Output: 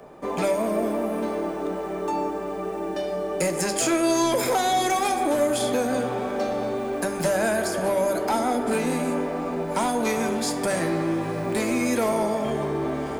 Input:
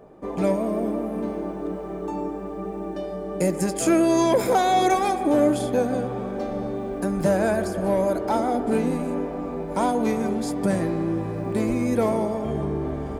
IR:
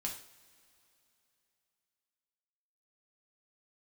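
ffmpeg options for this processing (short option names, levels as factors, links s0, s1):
-filter_complex "[0:a]tiltshelf=f=800:g=-5.5,acrossover=split=93|360|6700[s0][s1][s2][s3];[s0]acompressor=threshold=0.00126:ratio=4[s4];[s1]acompressor=threshold=0.0251:ratio=4[s5];[s2]acompressor=threshold=0.0501:ratio=4[s6];[s3]acompressor=threshold=0.0126:ratio=4[s7];[s4][s5][s6][s7]amix=inputs=4:normalize=0,asoftclip=type=tanh:threshold=0.0944,asplit=2[s8][s9];[1:a]atrim=start_sample=2205[s10];[s9][s10]afir=irnorm=-1:irlink=0,volume=0.708[s11];[s8][s11]amix=inputs=2:normalize=0,volume=1.19"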